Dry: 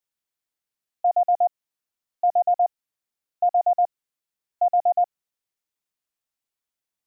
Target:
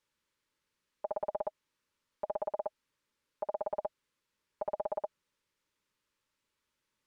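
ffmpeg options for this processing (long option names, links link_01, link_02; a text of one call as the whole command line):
ffmpeg -i in.wav -af "asuperstop=centerf=720:order=8:qfactor=3.4,aemphasis=mode=reproduction:type=50fm,volume=10dB" out.wav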